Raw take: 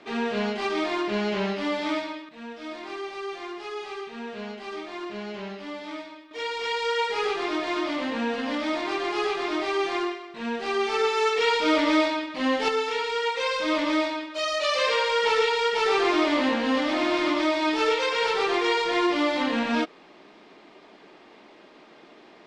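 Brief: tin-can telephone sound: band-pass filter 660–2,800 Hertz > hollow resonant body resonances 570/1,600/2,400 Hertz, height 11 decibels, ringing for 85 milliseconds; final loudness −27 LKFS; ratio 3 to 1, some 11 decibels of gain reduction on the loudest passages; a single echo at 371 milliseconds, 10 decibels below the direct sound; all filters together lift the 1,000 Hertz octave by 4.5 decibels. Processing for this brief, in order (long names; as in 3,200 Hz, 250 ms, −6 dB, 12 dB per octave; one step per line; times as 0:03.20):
parametric band 1,000 Hz +6.5 dB
downward compressor 3 to 1, threshold −32 dBFS
band-pass filter 660–2,800 Hz
single-tap delay 371 ms −10 dB
hollow resonant body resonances 570/1,600/2,400 Hz, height 11 dB, ringing for 85 ms
level +7 dB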